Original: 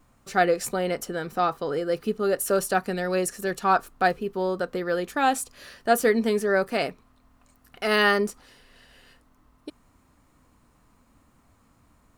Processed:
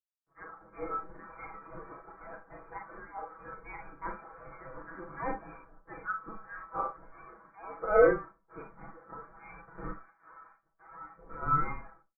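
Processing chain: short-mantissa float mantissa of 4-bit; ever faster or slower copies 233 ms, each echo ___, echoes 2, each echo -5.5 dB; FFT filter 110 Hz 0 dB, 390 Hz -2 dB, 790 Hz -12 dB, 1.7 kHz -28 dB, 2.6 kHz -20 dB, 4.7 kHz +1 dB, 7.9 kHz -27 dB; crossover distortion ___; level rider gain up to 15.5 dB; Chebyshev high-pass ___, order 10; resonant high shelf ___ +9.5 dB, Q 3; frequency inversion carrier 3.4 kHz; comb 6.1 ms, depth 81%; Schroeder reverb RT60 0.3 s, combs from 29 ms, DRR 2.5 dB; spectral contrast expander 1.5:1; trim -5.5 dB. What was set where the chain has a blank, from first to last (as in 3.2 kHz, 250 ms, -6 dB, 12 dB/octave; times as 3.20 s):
-6 st, -53 dBFS, 1 kHz, 1.6 kHz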